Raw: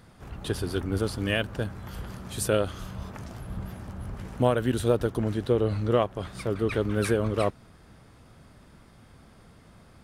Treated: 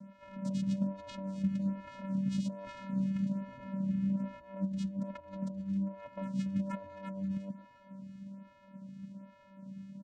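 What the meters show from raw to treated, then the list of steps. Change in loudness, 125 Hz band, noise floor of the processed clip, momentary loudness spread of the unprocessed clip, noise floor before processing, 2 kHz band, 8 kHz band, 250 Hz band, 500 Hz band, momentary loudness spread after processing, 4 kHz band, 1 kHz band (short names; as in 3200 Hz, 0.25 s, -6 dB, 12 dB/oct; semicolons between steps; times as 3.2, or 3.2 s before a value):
-8.0 dB, -8.0 dB, -60 dBFS, 14 LU, -54 dBFS, -18.5 dB, under -15 dB, -2.0 dB, -20.5 dB, 16 LU, under -15 dB, -13.5 dB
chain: bell 240 Hz +6 dB 0.31 oct; negative-ratio compressor -33 dBFS, ratio -1; vocoder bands 4, square 194 Hz; on a send: feedback echo 0.264 s, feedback 60%, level -18 dB; on the sum: photocell phaser 1.2 Hz; gain +2.5 dB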